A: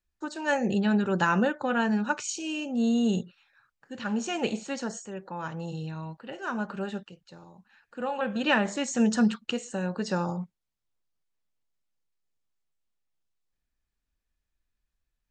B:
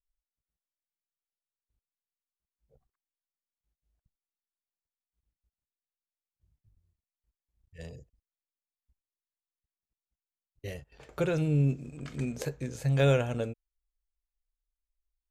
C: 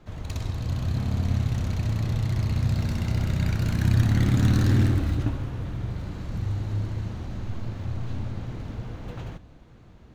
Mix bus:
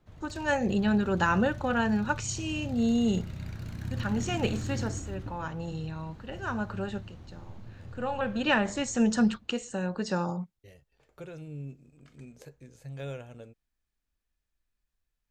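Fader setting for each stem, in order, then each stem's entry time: -1.0, -14.5, -14.0 dB; 0.00, 0.00, 0.00 s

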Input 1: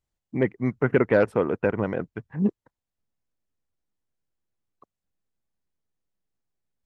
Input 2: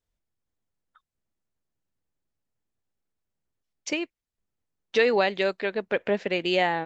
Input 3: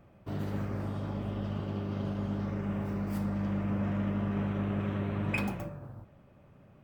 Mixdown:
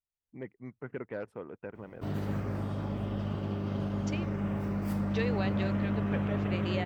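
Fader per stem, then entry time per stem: -19.0, -13.0, +1.0 dB; 0.00, 0.20, 1.75 s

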